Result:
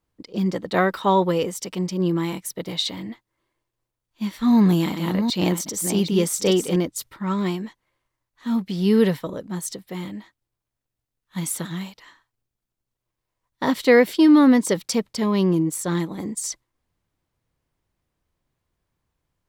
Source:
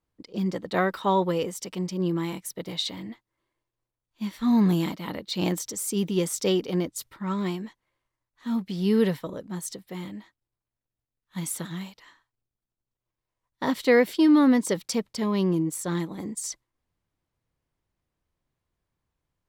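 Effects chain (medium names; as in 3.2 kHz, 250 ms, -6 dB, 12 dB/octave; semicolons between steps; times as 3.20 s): 4.52–6.76 s: chunks repeated in reverse 391 ms, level -7 dB; trim +4.5 dB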